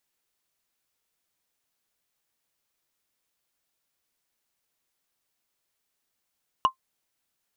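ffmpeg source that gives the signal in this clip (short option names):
-f lavfi -i "aevalsrc='0.266*pow(10,-3*t/0.1)*sin(2*PI*1050*t)+0.0841*pow(10,-3*t/0.03)*sin(2*PI*2894.8*t)+0.0266*pow(10,-3*t/0.013)*sin(2*PI*5674.2*t)+0.00841*pow(10,-3*t/0.007)*sin(2*PI*9379.6*t)+0.00266*pow(10,-3*t/0.004)*sin(2*PI*14007*t)':d=0.45:s=44100"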